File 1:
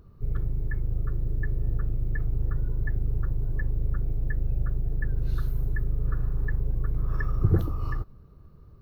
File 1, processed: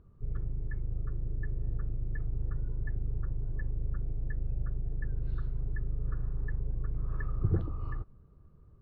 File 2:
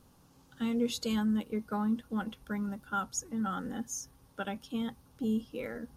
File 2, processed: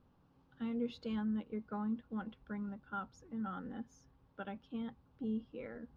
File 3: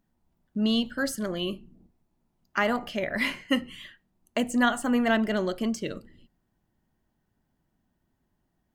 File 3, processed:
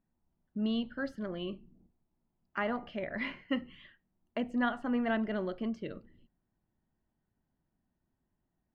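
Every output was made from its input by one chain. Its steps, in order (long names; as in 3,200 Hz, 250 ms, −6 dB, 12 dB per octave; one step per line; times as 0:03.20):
high-frequency loss of the air 320 metres
level −6.5 dB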